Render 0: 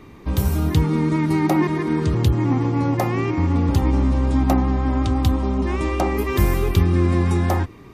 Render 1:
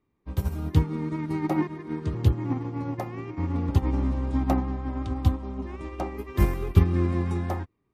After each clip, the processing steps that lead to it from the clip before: high shelf 3500 Hz -7 dB; upward expander 2.5:1, over -33 dBFS; gain +1 dB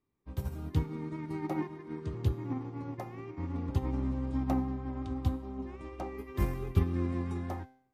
resonator 130 Hz, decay 0.6 s, harmonics all, mix 60%; gain -1.5 dB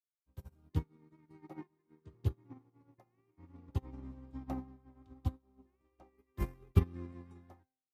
upward expander 2.5:1, over -43 dBFS; gain +1.5 dB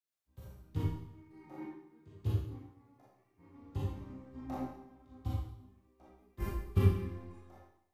chorus 0.34 Hz, delay 15.5 ms, depth 7.7 ms; Schroeder reverb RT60 0.73 s, combs from 28 ms, DRR -5.5 dB

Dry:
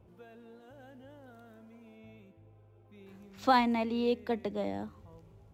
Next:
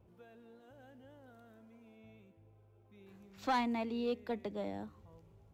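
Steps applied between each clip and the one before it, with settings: soft clip -20.5 dBFS, distortion -15 dB; gain -5 dB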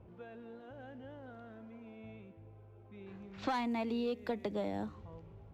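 low-pass opened by the level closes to 2500 Hz, open at -36 dBFS; compressor 10:1, threshold -40 dBFS, peak gain reduction 11.5 dB; gain +8 dB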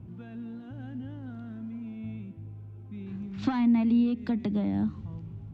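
treble ducked by the level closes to 2800 Hz, closed at -32 dBFS; graphic EQ 125/250/500/1000/2000 Hz +10/+9/-12/-3/-3 dB; gain +5.5 dB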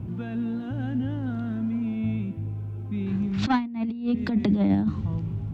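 negative-ratio compressor -29 dBFS, ratio -0.5; gain +7.5 dB

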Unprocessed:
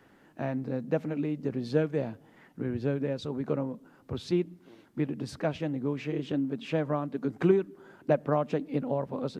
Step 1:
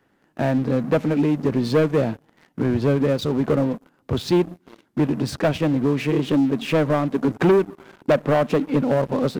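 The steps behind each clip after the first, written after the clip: sample leveller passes 3; gain +1.5 dB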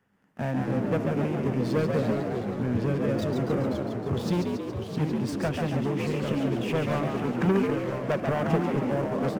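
thirty-one-band EQ 100 Hz +6 dB, 200 Hz +9 dB, 315 Hz -12 dB, 630 Hz -4 dB, 4000 Hz -7 dB; on a send: frequency-shifting echo 0.139 s, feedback 58%, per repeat +69 Hz, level -5 dB; on the sum: echoes that change speed 0.136 s, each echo -2 st, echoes 3, each echo -6 dB; gain -7.5 dB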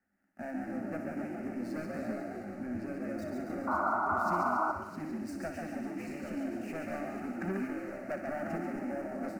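fixed phaser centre 680 Hz, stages 8; painted sound noise, 3.67–4.72, 600–1500 Hz -24 dBFS; thinning echo 61 ms, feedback 80%, high-pass 710 Hz, level -8 dB; gain -7.5 dB

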